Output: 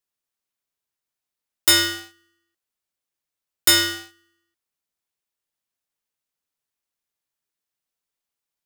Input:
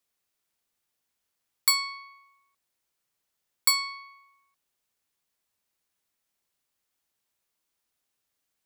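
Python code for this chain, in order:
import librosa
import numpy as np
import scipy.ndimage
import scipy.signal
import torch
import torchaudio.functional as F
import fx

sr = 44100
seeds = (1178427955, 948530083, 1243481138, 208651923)

y = fx.leveller(x, sr, passes=3)
y = y * np.sign(np.sin(2.0 * np.pi * 770.0 * np.arange(len(y)) / sr))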